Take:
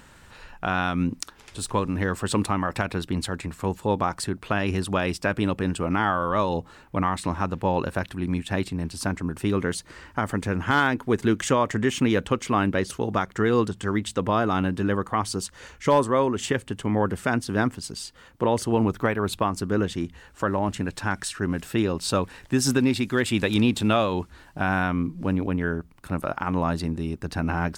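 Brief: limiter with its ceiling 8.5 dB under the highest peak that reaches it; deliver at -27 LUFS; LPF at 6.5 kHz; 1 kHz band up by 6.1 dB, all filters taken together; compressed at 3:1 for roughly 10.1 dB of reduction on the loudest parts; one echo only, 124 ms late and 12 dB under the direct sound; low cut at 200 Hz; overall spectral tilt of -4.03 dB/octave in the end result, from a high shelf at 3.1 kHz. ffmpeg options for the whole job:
-af "highpass=200,lowpass=6500,equalizer=f=1000:t=o:g=7,highshelf=f=3100:g=4.5,acompressor=threshold=0.0562:ratio=3,alimiter=limit=0.133:level=0:latency=1,aecho=1:1:124:0.251,volume=1.68"

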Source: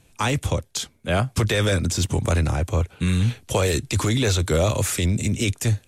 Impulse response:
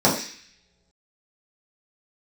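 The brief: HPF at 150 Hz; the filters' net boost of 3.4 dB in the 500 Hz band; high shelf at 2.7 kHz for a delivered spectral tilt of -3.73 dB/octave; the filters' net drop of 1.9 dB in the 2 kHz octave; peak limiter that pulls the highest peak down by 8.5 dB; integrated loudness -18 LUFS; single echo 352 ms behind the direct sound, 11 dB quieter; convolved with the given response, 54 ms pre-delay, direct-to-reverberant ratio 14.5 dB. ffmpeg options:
-filter_complex "[0:a]highpass=150,equalizer=f=500:t=o:g=4,equalizer=f=2000:t=o:g=-6.5,highshelf=f=2700:g=8,alimiter=limit=0.158:level=0:latency=1,aecho=1:1:352:0.282,asplit=2[s0][s1];[1:a]atrim=start_sample=2205,adelay=54[s2];[s1][s2]afir=irnorm=-1:irlink=0,volume=0.0188[s3];[s0][s3]amix=inputs=2:normalize=0,volume=2.37"

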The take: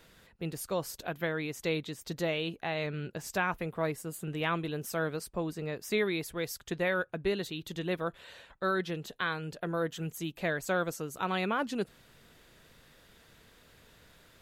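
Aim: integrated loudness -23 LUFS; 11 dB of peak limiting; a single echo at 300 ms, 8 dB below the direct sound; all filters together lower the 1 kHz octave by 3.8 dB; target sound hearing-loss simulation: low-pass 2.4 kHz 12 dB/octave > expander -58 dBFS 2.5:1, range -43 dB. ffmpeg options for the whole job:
-af "equalizer=f=1000:t=o:g=-5,alimiter=level_in=1.68:limit=0.0631:level=0:latency=1,volume=0.596,lowpass=2400,aecho=1:1:300:0.398,agate=range=0.00708:threshold=0.00126:ratio=2.5,volume=6.68"

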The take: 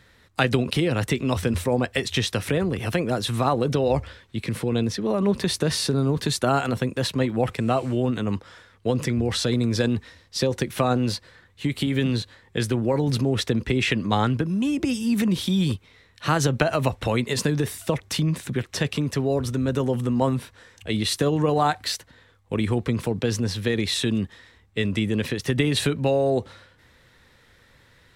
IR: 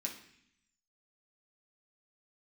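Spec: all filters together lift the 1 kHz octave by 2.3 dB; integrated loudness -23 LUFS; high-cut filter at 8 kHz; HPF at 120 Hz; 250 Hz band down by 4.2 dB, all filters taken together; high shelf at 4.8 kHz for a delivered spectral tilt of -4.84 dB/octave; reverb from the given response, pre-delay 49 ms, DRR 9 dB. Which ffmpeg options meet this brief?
-filter_complex "[0:a]highpass=120,lowpass=8000,equalizer=f=250:t=o:g=-5,equalizer=f=1000:t=o:g=4,highshelf=f=4800:g=-8.5,asplit=2[s0][s1];[1:a]atrim=start_sample=2205,adelay=49[s2];[s1][s2]afir=irnorm=-1:irlink=0,volume=0.376[s3];[s0][s3]amix=inputs=2:normalize=0,volume=1.33"

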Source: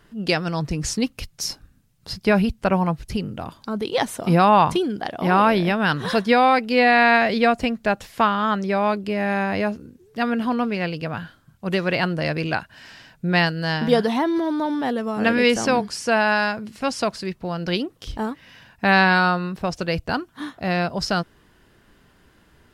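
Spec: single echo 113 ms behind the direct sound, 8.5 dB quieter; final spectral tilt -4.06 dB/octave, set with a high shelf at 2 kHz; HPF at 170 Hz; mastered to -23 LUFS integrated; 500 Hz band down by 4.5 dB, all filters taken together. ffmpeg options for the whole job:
-af "highpass=170,equalizer=f=500:t=o:g=-5,highshelf=f=2000:g=-7,aecho=1:1:113:0.376,volume=1.12"

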